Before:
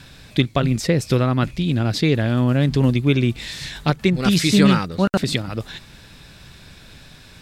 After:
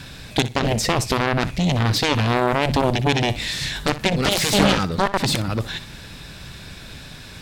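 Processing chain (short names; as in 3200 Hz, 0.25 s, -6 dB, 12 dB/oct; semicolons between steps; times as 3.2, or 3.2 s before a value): added harmonics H 7 -11 dB, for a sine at -1.5 dBFS; limiter -11.5 dBFS, peak gain reduction 9.5 dB; flutter echo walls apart 10.5 m, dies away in 0.24 s; gain +6 dB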